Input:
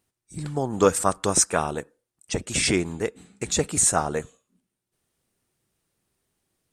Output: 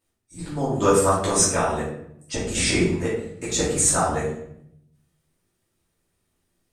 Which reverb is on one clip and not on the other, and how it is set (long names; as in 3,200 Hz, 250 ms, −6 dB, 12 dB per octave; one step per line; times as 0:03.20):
rectangular room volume 160 cubic metres, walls mixed, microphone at 2.7 metres
level −7.5 dB